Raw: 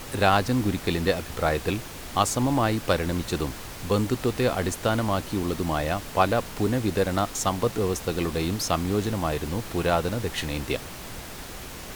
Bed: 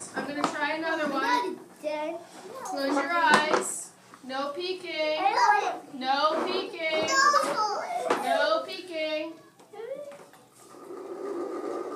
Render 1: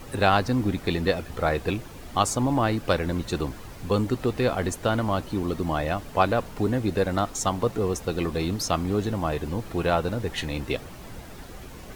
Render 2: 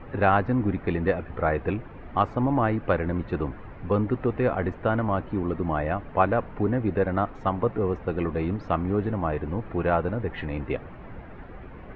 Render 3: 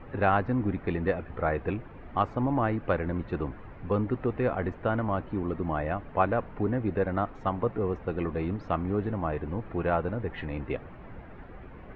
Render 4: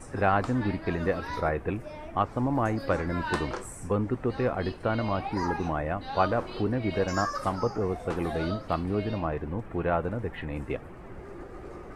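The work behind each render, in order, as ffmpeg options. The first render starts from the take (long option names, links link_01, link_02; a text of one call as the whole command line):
ffmpeg -i in.wav -af "afftdn=noise_reduction=9:noise_floor=-39" out.wav
ffmpeg -i in.wav -af "lowpass=frequency=2200:width=0.5412,lowpass=frequency=2200:width=1.3066" out.wav
ffmpeg -i in.wav -af "volume=-3.5dB" out.wav
ffmpeg -i in.wav -i bed.wav -filter_complex "[1:a]volume=-11.5dB[link_01];[0:a][link_01]amix=inputs=2:normalize=0" out.wav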